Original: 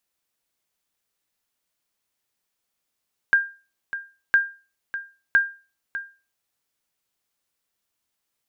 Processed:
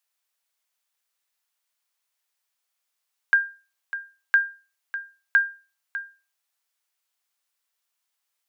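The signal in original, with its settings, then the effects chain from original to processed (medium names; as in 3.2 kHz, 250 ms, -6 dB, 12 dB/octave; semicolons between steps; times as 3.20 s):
sonar ping 1.6 kHz, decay 0.33 s, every 1.01 s, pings 3, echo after 0.60 s, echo -13 dB -9.5 dBFS
high-pass 740 Hz 12 dB/octave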